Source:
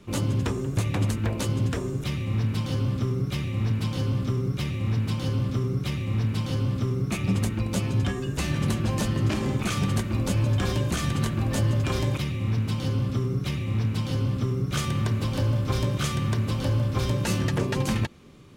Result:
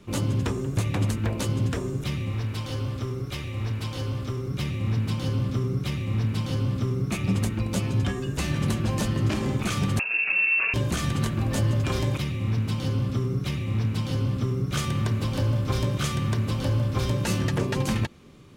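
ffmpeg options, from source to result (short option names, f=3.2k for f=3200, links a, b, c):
-filter_complex "[0:a]asettb=1/sr,asplit=3[a][b][c];[a]atrim=end=2.304[d];[b]atrim=start=2.3:end=4.51,asetpts=PTS-STARTPTS,afade=t=in:d=0.004:c=qsin,afade=t=out:st=2.206:d=0.004:c=qsin,equalizer=f=180:w=1.5:g=-11[e];[c]atrim=start=4.506[f];[d][e]acrossfade=d=0.004:c1=hsin:c2=qsin[g];[g][f]acrossfade=d=0.004:c1=qsin:c2=hsin,asettb=1/sr,asplit=3[h][i][j];[h]atrim=end=9.994[k];[i]atrim=start=9.99:end=10.74,asetpts=PTS-STARTPTS,afade=t=in:d=0.004:c=qsin,afade=t=out:st=0.746:d=0.004:c=qsin,lowpass=f=2.4k:t=q:w=0.5098,lowpass=f=2.4k:t=q:w=0.6013,lowpass=f=2.4k:t=q:w=0.9,lowpass=f=2.4k:t=q:w=2.563,afreqshift=-2800[l];[j]atrim=start=10.736[m];[k][l]acrossfade=d=0.004:c1=hsin:c2=qsin[n];[n][m]acrossfade=d=0.004:c1=qsin:c2=hsin"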